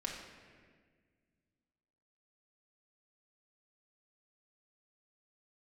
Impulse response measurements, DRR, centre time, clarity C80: −2.0 dB, 56 ms, 5.0 dB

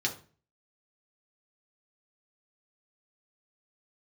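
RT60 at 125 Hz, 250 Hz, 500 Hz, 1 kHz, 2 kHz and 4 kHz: 0.55, 0.50, 0.40, 0.35, 0.35, 0.30 seconds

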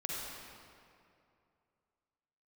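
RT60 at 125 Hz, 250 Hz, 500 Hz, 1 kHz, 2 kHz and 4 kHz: 2.7, 2.6, 2.6, 2.5, 2.1, 1.6 seconds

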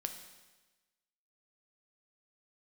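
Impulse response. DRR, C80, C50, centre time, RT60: 5.5 dB, 10.5 dB, 8.5 dB, 20 ms, 1.2 s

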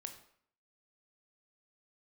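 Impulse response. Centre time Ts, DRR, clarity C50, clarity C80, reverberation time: 13 ms, 6.0 dB, 9.5 dB, 12.5 dB, 0.60 s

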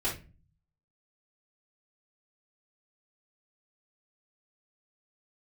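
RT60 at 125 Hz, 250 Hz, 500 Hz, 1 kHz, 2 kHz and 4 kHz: 0.95, 0.60, 0.35, 0.25, 0.30, 0.25 seconds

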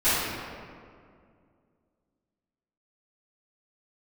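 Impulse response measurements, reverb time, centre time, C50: 2.2 s, 136 ms, −4.0 dB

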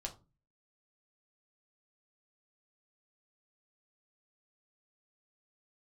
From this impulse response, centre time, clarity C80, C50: 11 ms, 20.0 dB, 14.5 dB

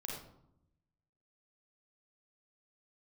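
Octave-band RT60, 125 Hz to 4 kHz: 1.3, 1.1, 0.80, 0.75, 0.50, 0.40 seconds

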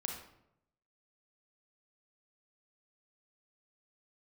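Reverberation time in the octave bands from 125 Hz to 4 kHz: 1.0, 0.90, 0.85, 0.75, 0.60, 0.50 seconds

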